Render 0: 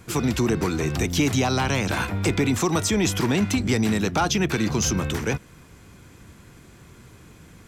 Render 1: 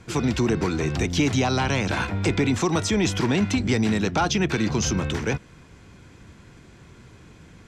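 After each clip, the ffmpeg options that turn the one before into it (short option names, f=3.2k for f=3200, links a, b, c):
-af "lowpass=6.4k,bandreject=f=1.2k:w=22"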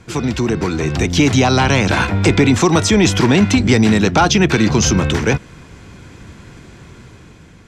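-af "dynaudnorm=f=410:g=5:m=6dB,volume=4dB"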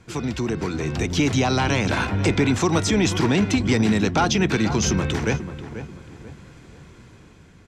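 -filter_complex "[0:a]asplit=2[a][b];[b]adelay=488,lowpass=f=1.7k:p=1,volume=-11dB,asplit=2[c][d];[d]adelay=488,lowpass=f=1.7k:p=1,volume=0.38,asplit=2[e][f];[f]adelay=488,lowpass=f=1.7k:p=1,volume=0.38,asplit=2[g][h];[h]adelay=488,lowpass=f=1.7k:p=1,volume=0.38[i];[a][c][e][g][i]amix=inputs=5:normalize=0,volume=-7.5dB"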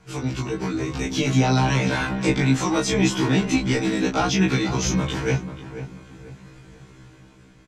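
-filter_complex "[0:a]asplit=2[a][b];[b]adelay=22,volume=-4dB[c];[a][c]amix=inputs=2:normalize=0,afftfilt=real='re*1.73*eq(mod(b,3),0)':imag='im*1.73*eq(mod(b,3),0)':win_size=2048:overlap=0.75"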